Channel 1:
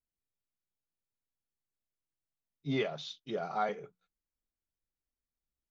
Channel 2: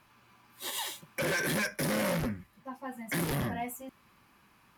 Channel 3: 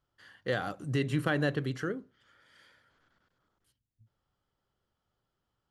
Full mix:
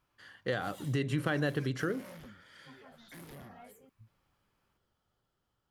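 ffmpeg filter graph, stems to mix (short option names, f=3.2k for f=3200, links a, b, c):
-filter_complex "[0:a]alimiter=level_in=8dB:limit=-24dB:level=0:latency=1,volume=-8dB,volume=-18dB[a];[1:a]volume=-18.5dB[b];[2:a]dynaudnorm=f=310:g=9:m=3.5dB,volume=1.5dB[c];[a][b][c]amix=inputs=3:normalize=0,acompressor=threshold=-31dB:ratio=2"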